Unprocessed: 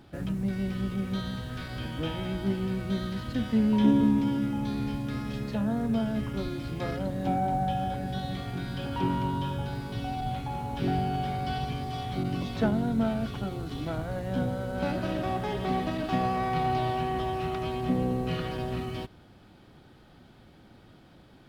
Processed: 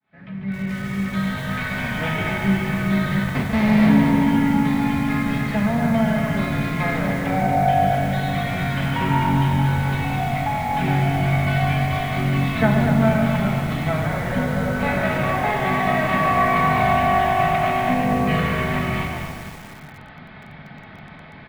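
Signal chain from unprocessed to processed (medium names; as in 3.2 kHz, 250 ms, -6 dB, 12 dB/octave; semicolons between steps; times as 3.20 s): fade-in on the opening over 1.72 s; peaking EQ 1.5 kHz +10 dB 2.6 oct; in parallel at +1.5 dB: compression 8:1, threshold -36 dBFS, peak gain reduction 20 dB; 3.23–3.89 s: on the sum: Schmitt trigger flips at -19 dBFS; cabinet simulation 110–3700 Hz, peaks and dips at 140 Hz +6 dB, 300 Hz -6 dB, 440 Hz -8 dB, 1.4 kHz -5 dB, 2.1 kHz +9 dB, 3 kHz -5 dB; frequency-shifting echo 143 ms, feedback 39%, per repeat -50 Hz, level -6.5 dB; on a send at -1 dB: reverberation RT60 0.80 s, pre-delay 5 ms; on the sum: bit-crushed delay 240 ms, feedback 55%, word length 6-bit, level -7 dB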